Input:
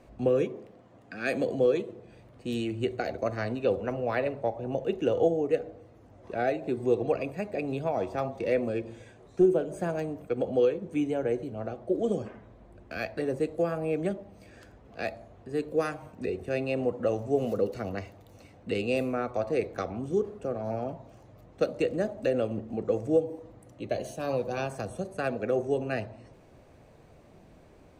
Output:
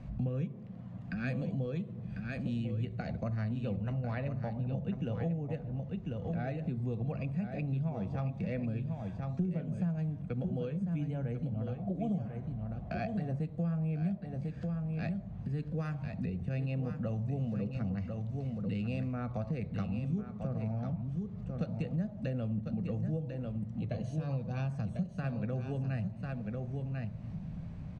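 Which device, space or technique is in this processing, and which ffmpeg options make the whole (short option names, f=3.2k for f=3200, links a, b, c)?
jukebox: -filter_complex "[0:a]asettb=1/sr,asplit=3[a][b][c];[a]atrim=end=11.784[d];[b]atrim=start=11.78:end=13.45,asetpts=PTS-STARTPTS,afade=t=in:d=0.004:c=qsin,afade=t=out:st=1.666:d=0.004:c=qsin,equalizer=f=710:w=4.7:g=14[e];[c]atrim=start=13.446[f];[d][e]acrossfade=d=0.004:c1=hsin:c2=qsin[g];[g][f]acrossfade=d=0.004:c1=qsin:c2=hsin,lowpass=5.1k,lowshelf=f=250:t=q:w=3:g=12.5,aecho=1:1:1046:0.398,acompressor=threshold=-36dB:ratio=3"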